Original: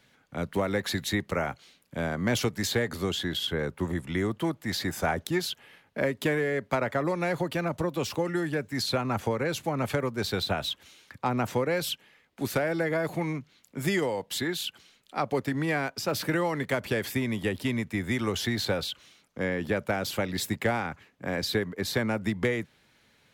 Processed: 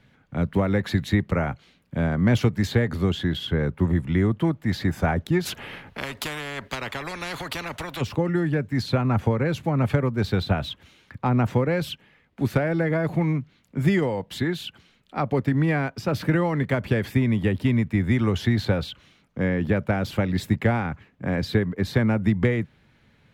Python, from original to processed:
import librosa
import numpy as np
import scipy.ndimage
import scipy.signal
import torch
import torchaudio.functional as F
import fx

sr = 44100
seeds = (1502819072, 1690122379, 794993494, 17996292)

y = fx.bass_treble(x, sr, bass_db=10, treble_db=-11)
y = fx.spectral_comp(y, sr, ratio=4.0, at=(5.45, 8.0), fade=0.02)
y = y * 10.0 ** (2.0 / 20.0)